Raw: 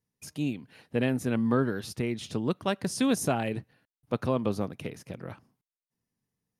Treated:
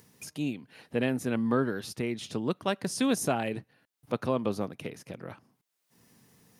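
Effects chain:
high-pass filter 160 Hz 6 dB per octave
upward compression, threshold −40 dBFS

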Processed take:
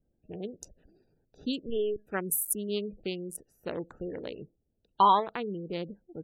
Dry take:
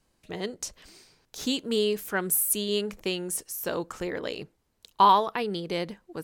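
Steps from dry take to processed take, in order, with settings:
adaptive Wiener filter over 41 samples
0:01.66–0:02.07: linear-prediction vocoder at 8 kHz pitch kept
gate on every frequency bin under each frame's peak −30 dB strong
level −2.5 dB

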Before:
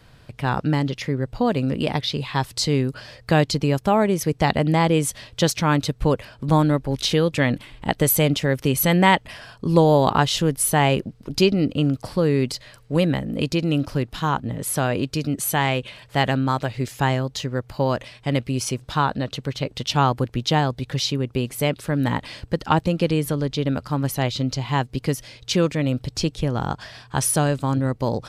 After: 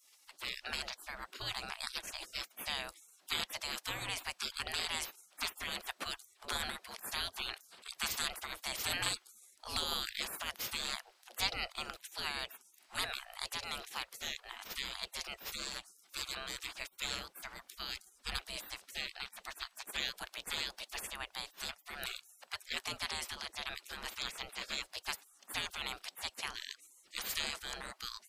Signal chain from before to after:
gate on every frequency bin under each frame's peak −30 dB weak
0:17.94–0:18.42: low-shelf EQ 200 Hz +11 dB
level +3.5 dB

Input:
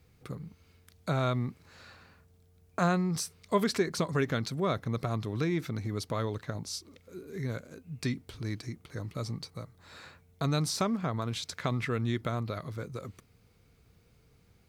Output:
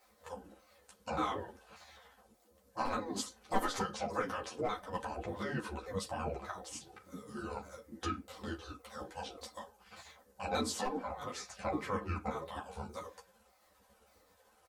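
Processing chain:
pitch shifter swept by a sawtooth −9 semitones, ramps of 586 ms
high-pass filter 130 Hz 12 dB per octave
parametric band 300 Hz +14.5 dB 1.7 octaves
hard clipping −11.5 dBFS, distortion −24 dB
on a send at −8 dB: convolution reverb RT60 0.20 s, pre-delay 4 ms
on the sum: gate on every frequency bin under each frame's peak −15 dB weak
parametric band 2,800 Hz −7 dB 1.6 octaves
comb filter 3.9 ms, depth 43%
in parallel at 0 dB: downward compressor, threshold −47 dBFS, peak gain reduction 20.5 dB
on the sum: string-ensemble chorus
level +2 dB

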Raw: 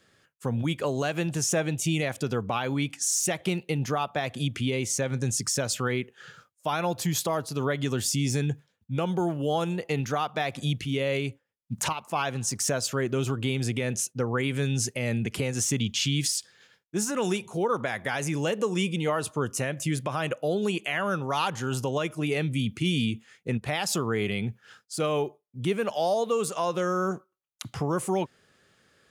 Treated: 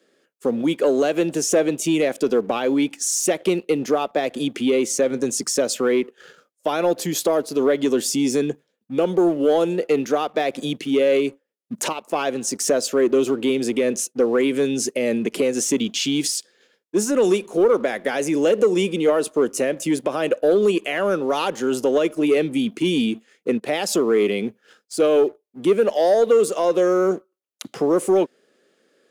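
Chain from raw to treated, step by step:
high-pass filter 250 Hz 24 dB per octave
low shelf with overshoot 680 Hz +7.5 dB, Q 1.5
leveller curve on the samples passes 1

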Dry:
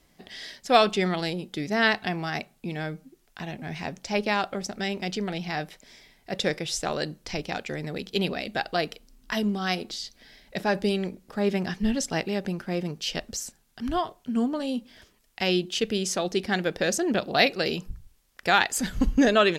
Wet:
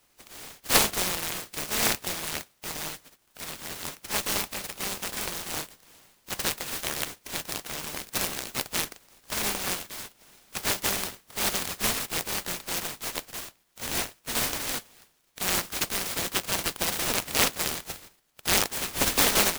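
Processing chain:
compressing power law on the bin magnitudes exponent 0.14
short delay modulated by noise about 1,300 Hz, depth 0.2 ms
level −1.5 dB

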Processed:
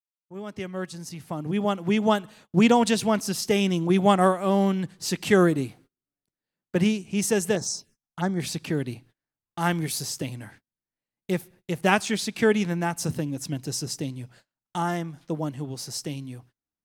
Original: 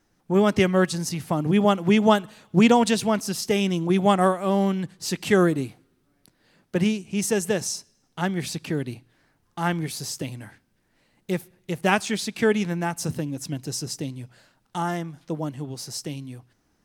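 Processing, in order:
fade in at the beginning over 3.25 s
noise gate −51 dBFS, range −29 dB
0:07.55–0:08.40: phaser swept by the level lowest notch 320 Hz, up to 2,800 Hz, full sweep at −25.5 dBFS
0:09.60–0:10.03: high-shelf EQ 5,400 Hz +6.5 dB

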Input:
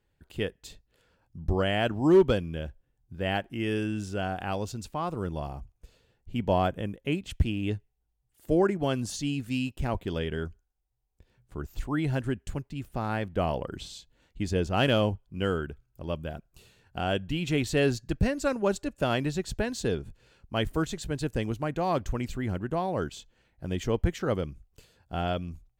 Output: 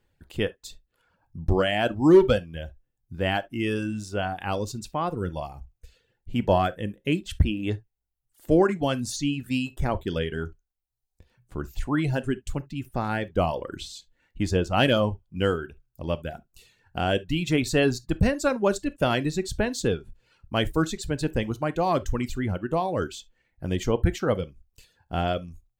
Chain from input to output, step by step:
reverb reduction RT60 1 s
on a send: convolution reverb, pre-delay 3 ms, DRR 14 dB
on the sum: level +4.5 dB

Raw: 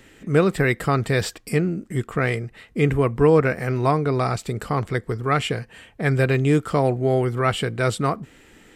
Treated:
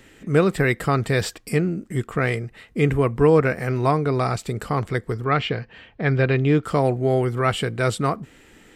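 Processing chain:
0:05.24–0:06.64: low-pass filter 4,700 Hz 24 dB per octave

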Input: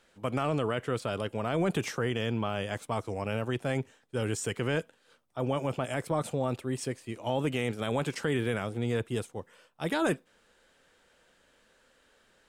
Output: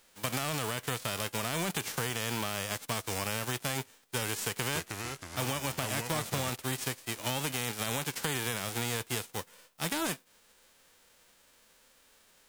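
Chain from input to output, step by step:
spectral envelope flattened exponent 0.3
downward compressor, threshold −31 dBFS, peak gain reduction 8.5 dB
0:04.44–0:06.50: delay with pitch and tempo change per echo 284 ms, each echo −3 semitones, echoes 3, each echo −6 dB
level +2 dB

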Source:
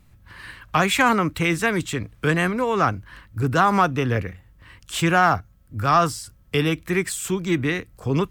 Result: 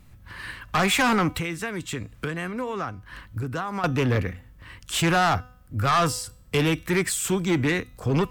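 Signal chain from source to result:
0:01.38–0:03.84: downward compressor 6 to 1, threshold −30 dBFS, peak gain reduction 16.5 dB
tuned comb filter 250 Hz, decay 0.58 s, harmonics all, mix 40%
soft clipping −23.5 dBFS, distortion −9 dB
level +7 dB

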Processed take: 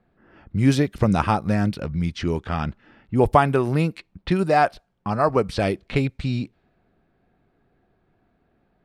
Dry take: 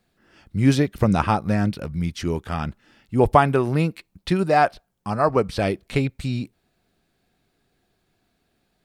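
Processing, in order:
low-pass that shuts in the quiet parts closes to 1,500 Hz, open at −17.5 dBFS
in parallel at +2 dB: downward compressor, threshold −32 dBFS, peak gain reduction 21 dB
on the sum: level −2 dB

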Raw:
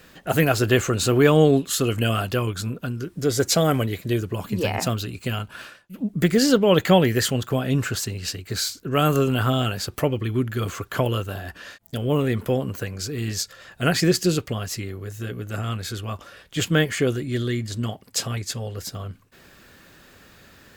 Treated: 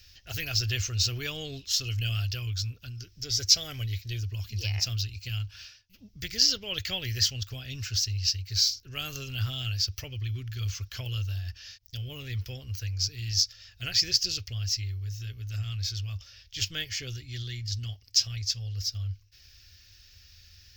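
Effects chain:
drawn EQ curve 100 Hz 0 dB, 160 Hz −28 dB, 1,100 Hz −27 dB, 2,600 Hz −7 dB, 3,800 Hz −5 dB, 5,500 Hz +7 dB, 9,300 Hz −29 dB, 15,000 Hz −5 dB
level +2 dB

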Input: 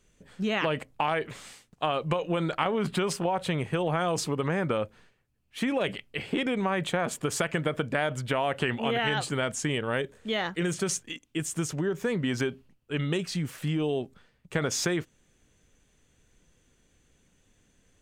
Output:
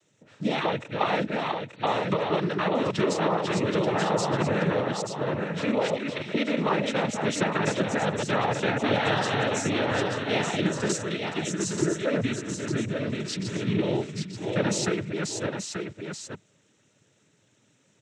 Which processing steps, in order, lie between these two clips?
delay that plays each chunk backwards 418 ms, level −3.5 dB
parametric band 460 Hz +2 dB 1.9 octaves
0:12.32–0:13.66: compressor whose output falls as the input rises −31 dBFS, ratio −1
cochlear-implant simulation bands 12
0:01.30–0:01.87: linear-phase brick-wall low-pass 4,600 Hz
single-tap delay 882 ms −6 dB

